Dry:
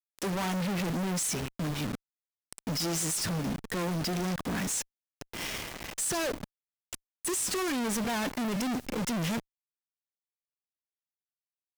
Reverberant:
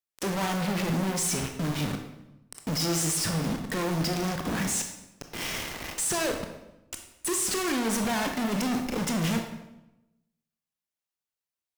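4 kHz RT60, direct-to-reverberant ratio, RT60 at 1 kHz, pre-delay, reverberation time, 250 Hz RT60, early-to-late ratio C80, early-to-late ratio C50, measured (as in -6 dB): 0.75 s, 4.0 dB, 0.90 s, 20 ms, 0.90 s, 1.1 s, 9.0 dB, 6.5 dB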